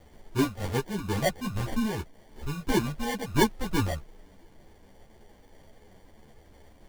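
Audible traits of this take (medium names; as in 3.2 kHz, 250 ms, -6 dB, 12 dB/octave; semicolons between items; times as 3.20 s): a quantiser's noise floor 10-bit, dither triangular; phasing stages 6, 3 Hz, lowest notch 330–1100 Hz; aliases and images of a low sample rate 1.3 kHz, jitter 0%; a shimmering, thickened sound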